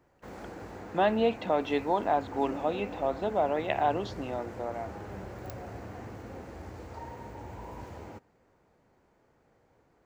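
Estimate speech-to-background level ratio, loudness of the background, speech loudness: 13.0 dB, −43.0 LKFS, −30.0 LKFS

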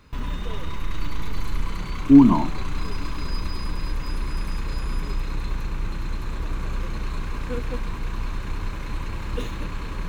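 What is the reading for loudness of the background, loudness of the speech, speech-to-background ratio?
−32.0 LKFS, −15.5 LKFS, 16.5 dB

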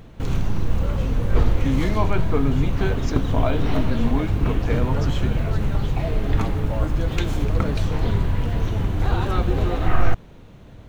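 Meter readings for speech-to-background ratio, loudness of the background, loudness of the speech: −3.5 dB, −24.0 LKFS, −27.5 LKFS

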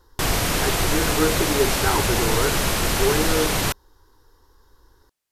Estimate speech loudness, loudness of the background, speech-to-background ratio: −26.5 LKFS, −21.5 LKFS, −5.0 dB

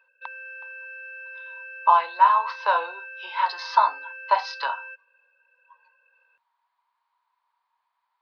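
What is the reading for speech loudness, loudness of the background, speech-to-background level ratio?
−22.5 LKFS, −38.0 LKFS, 15.5 dB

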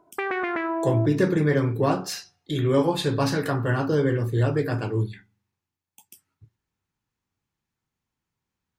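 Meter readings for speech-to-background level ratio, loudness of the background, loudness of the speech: 4.0 dB, −28.0 LKFS, −24.0 LKFS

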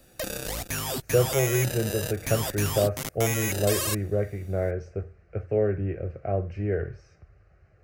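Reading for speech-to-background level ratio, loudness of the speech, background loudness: 2.0 dB, −28.0 LKFS, −30.0 LKFS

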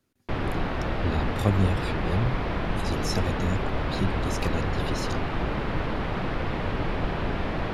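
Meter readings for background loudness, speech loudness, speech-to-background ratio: −29.5 LKFS, −31.0 LKFS, −1.5 dB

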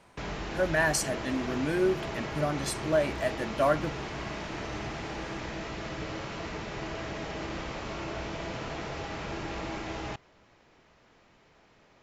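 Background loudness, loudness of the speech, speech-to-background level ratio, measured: −36.5 LKFS, −29.5 LKFS, 7.0 dB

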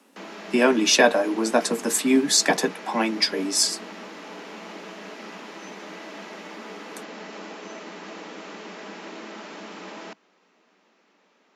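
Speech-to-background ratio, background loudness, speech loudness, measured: 18.0 dB, −39.0 LKFS, −21.0 LKFS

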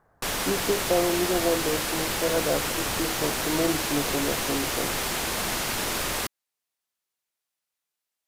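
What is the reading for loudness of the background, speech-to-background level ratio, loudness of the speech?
−27.0 LKFS, −2.0 dB, −29.0 LKFS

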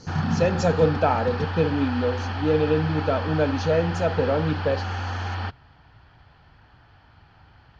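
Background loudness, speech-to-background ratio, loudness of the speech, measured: −29.0 LKFS, 5.0 dB, −24.0 LKFS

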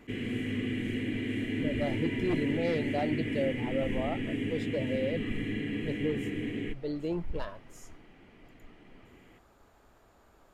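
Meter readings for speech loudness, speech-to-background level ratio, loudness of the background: −35.5 LKFS, −1.5 dB, −34.0 LKFS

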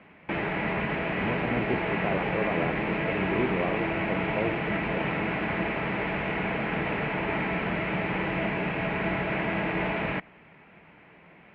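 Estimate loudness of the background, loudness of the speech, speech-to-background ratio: −29.0 LKFS, −33.5 LKFS, −4.5 dB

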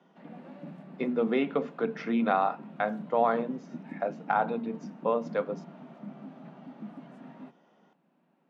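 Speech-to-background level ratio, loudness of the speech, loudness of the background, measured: 15.5 dB, −30.0 LKFS, −45.5 LKFS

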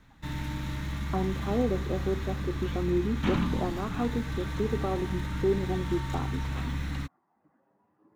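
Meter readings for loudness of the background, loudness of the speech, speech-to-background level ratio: −33.5 LKFS, −32.5 LKFS, 1.0 dB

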